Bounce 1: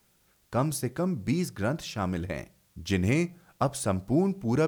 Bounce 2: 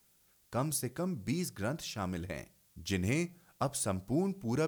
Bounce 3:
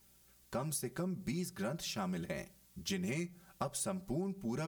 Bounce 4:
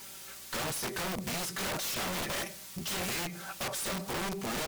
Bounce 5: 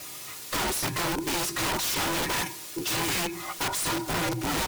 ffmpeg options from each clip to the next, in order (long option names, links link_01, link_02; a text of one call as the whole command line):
ffmpeg -i in.wav -af "highshelf=frequency=4200:gain=8,volume=-7dB" out.wav
ffmpeg -i in.wav -af "aecho=1:1:5.2:0.84,acompressor=threshold=-35dB:ratio=5,aeval=exprs='val(0)+0.000224*(sin(2*PI*60*n/s)+sin(2*PI*2*60*n/s)/2+sin(2*PI*3*60*n/s)/3+sin(2*PI*4*60*n/s)/4+sin(2*PI*5*60*n/s)/5)':channel_layout=same" out.wav
ffmpeg -i in.wav -filter_complex "[0:a]asplit=2[link_01][link_02];[link_02]highpass=frequency=720:poles=1,volume=34dB,asoftclip=type=tanh:threshold=-23.5dB[link_03];[link_01][link_03]amix=inputs=2:normalize=0,lowpass=frequency=6100:poles=1,volume=-6dB,asplit=2[link_04][link_05];[link_05]adelay=18,volume=-13dB[link_06];[link_04][link_06]amix=inputs=2:normalize=0,aeval=exprs='(mod(25.1*val(0)+1,2)-1)/25.1':channel_layout=same,volume=-3dB" out.wav
ffmpeg -i in.wav -af "afftfilt=real='real(if(between(b,1,1008),(2*floor((b-1)/24)+1)*24-b,b),0)':imag='imag(if(between(b,1,1008),(2*floor((b-1)/24)+1)*24-b,b),0)*if(between(b,1,1008),-1,1)':win_size=2048:overlap=0.75,volume=6.5dB" out.wav